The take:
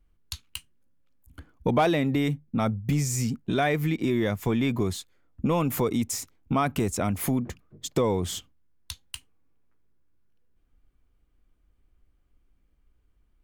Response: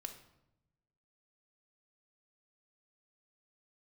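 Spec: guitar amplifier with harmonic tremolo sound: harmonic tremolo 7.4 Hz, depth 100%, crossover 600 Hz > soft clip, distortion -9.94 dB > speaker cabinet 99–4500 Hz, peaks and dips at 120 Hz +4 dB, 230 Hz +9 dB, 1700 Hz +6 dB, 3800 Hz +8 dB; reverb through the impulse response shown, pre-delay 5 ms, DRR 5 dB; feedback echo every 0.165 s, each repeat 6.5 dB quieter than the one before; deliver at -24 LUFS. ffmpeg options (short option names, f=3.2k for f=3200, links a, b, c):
-filter_complex "[0:a]aecho=1:1:165|330|495|660|825|990:0.473|0.222|0.105|0.0491|0.0231|0.0109,asplit=2[a][b];[1:a]atrim=start_sample=2205,adelay=5[c];[b][c]afir=irnorm=-1:irlink=0,volume=-1.5dB[d];[a][d]amix=inputs=2:normalize=0,acrossover=split=600[e][f];[e]aeval=exprs='val(0)*(1-1/2+1/2*cos(2*PI*7.4*n/s))':c=same[g];[f]aeval=exprs='val(0)*(1-1/2-1/2*cos(2*PI*7.4*n/s))':c=same[h];[g][h]amix=inputs=2:normalize=0,asoftclip=threshold=-26dB,highpass=99,equalizer=f=120:t=q:w=4:g=4,equalizer=f=230:t=q:w=4:g=9,equalizer=f=1.7k:t=q:w=4:g=6,equalizer=f=3.8k:t=q:w=4:g=8,lowpass=f=4.5k:w=0.5412,lowpass=f=4.5k:w=1.3066,volume=5.5dB"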